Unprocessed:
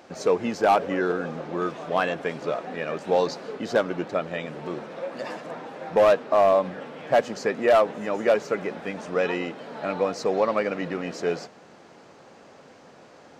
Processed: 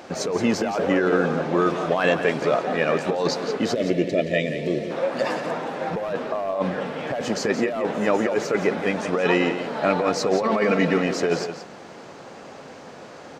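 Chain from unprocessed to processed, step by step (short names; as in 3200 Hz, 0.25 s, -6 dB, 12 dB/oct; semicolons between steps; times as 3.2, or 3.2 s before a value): 3.74–4.91 spectral gain 710–1700 Hz -20 dB; 10.43–10.98 comb 4.5 ms, depth 67%; negative-ratio compressor -26 dBFS, ratio -1; echo 0.173 s -10 dB; gain +5 dB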